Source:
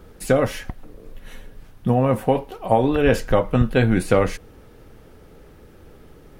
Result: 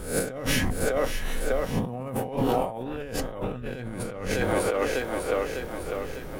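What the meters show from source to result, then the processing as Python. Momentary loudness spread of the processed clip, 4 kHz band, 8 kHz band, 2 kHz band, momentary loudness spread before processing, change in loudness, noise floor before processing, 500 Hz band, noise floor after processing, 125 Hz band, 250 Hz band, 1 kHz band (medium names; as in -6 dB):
8 LU, +1.5 dB, +4.5 dB, -2.0 dB, 10 LU, -8.5 dB, -47 dBFS, -5.5 dB, -37 dBFS, -9.0 dB, -7.5 dB, -6.0 dB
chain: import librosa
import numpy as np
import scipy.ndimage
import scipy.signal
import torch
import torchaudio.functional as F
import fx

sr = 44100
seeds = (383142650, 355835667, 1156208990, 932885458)

y = fx.spec_swells(x, sr, rise_s=0.47)
y = fx.dmg_crackle(y, sr, seeds[0], per_s=52.0, level_db=-45.0)
y = fx.high_shelf(y, sr, hz=11000.0, db=4.5)
y = fx.echo_split(y, sr, split_hz=320.0, low_ms=134, high_ms=601, feedback_pct=52, wet_db=-10)
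y = fx.over_compress(y, sr, threshold_db=-28.0, ratio=-1.0)
y = F.gain(torch.from_numpy(y), -1.0).numpy()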